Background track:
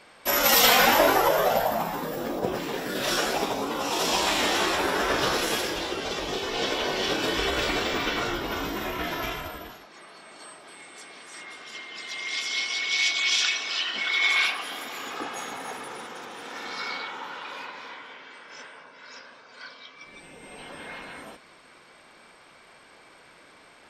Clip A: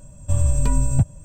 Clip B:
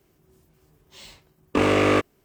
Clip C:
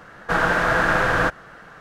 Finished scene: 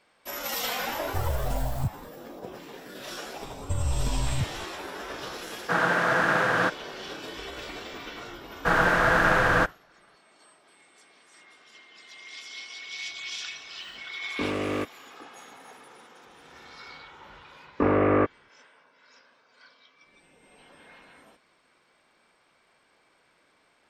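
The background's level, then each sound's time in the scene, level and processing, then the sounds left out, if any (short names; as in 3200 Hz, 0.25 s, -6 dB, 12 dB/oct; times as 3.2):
background track -12.5 dB
0.85 add A -11 dB + tracing distortion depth 0.27 ms
3.41 add A -4 dB + limiter -15.5 dBFS
5.4 add C -4 dB + HPF 130 Hz 24 dB/oct
8.36 add C -2 dB + expander -34 dBFS
12.84 add B -11.5 dB + bell 220 Hz +4 dB 1.3 oct
16.25 add B -2 dB + LPF 1800 Hz 24 dB/oct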